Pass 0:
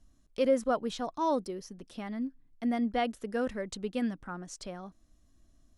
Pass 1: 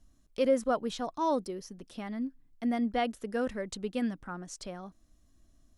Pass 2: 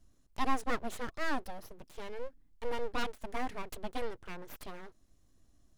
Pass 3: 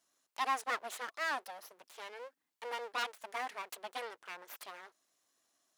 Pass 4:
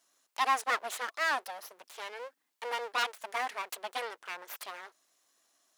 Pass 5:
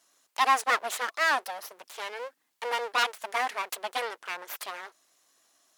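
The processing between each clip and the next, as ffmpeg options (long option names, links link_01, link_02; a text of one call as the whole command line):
ffmpeg -i in.wav -af "highshelf=frequency=10000:gain=3" out.wav
ffmpeg -i in.wav -af "aeval=exprs='abs(val(0))':channel_layout=same,volume=-1.5dB" out.wav
ffmpeg -i in.wav -af "highpass=770,volume=2dB" out.wav
ffmpeg -i in.wav -af "lowshelf=frequency=210:gain=-10.5,volume=6dB" out.wav
ffmpeg -i in.wav -af "volume=5.5dB" -ar 48000 -c:a libmp3lame -b:a 112k out.mp3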